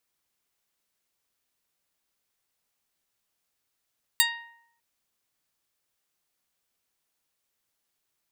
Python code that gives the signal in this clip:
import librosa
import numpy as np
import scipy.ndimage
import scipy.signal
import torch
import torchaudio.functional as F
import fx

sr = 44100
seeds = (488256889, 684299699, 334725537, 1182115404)

y = fx.pluck(sr, length_s=0.6, note=82, decay_s=0.78, pick=0.17, brightness='medium')